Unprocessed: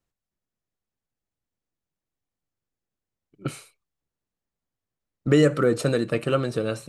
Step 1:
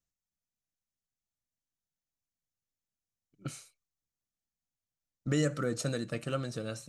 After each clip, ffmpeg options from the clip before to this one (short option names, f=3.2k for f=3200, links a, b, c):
-af "equalizer=f=400:t=o:w=0.67:g=-8,equalizer=f=1k:t=o:w=0.67:g=-5,equalizer=f=2.5k:t=o:w=0.67:g=-3,equalizer=f=6.3k:t=o:w=0.67:g=9,volume=-8dB"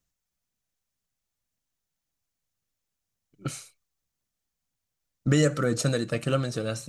-af "aphaser=in_gain=1:out_gain=1:delay=2.8:decay=0.23:speed=1.9:type=triangular,volume=7.5dB"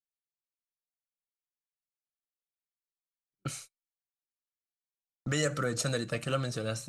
-filter_complex "[0:a]agate=range=-32dB:threshold=-44dB:ratio=16:detection=peak,equalizer=f=330:t=o:w=1.5:g=-3.5,acrossover=split=490[a][b];[a]alimiter=level_in=1dB:limit=-24dB:level=0:latency=1,volume=-1dB[c];[c][b]amix=inputs=2:normalize=0,volume=-2dB"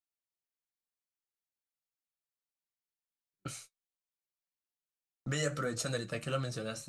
-af "flanger=delay=9.8:depth=5.3:regen=-42:speed=0.84:shape=triangular"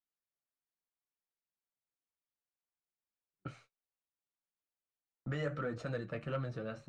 -af "lowpass=1.9k,asoftclip=type=tanh:threshold=-25dB,volume=-1.5dB"